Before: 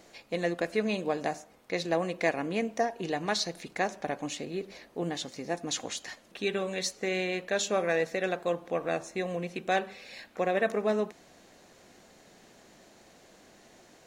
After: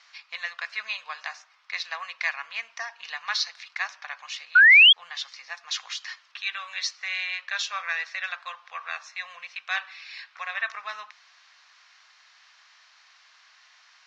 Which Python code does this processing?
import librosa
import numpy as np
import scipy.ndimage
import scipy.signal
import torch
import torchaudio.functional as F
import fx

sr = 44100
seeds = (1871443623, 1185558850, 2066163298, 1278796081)

y = fx.spec_paint(x, sr, seeds[0], shape='rise', start_s=4.55, length_s=0.38, low_hz=1400.0, high_hz=3400.0, level_db=-18.0)
y = scipy.signal.sosfilt(scipy.signal.ellip(3, 1.0, 50, [1100.0, 5400.0], 'bandpass', fs=sr, output='sos'), y)
y = y * librosa.db_to_amplitude(6.0)